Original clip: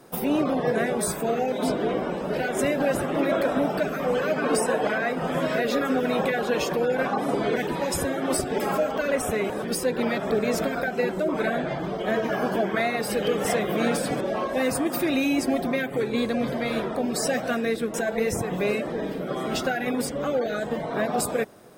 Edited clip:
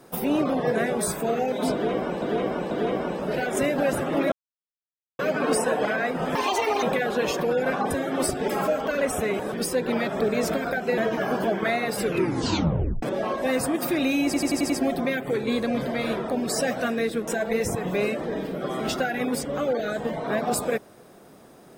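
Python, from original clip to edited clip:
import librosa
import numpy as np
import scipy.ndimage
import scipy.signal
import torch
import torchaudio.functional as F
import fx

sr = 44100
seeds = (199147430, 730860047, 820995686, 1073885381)

y = fx.edit(x, sr, fx.repeat(start_s=1.73, length_s=0.49, count=3),
    fx.silence(start_s=3.34, length_s=0.87),
    fx.speed_span(start_s=5.37, length_s=0.78, speed=1.64),
    fx.cut(start_s=7.23, length_s=0.78),
    fx.cut(start_s=11.08, length_s=1.01),
    fx.tape_stop(start_s=13.09, length_s=1.05),
    fx.stutter(start_s=15.36, slice_s=0.09, count=6), tone=tone)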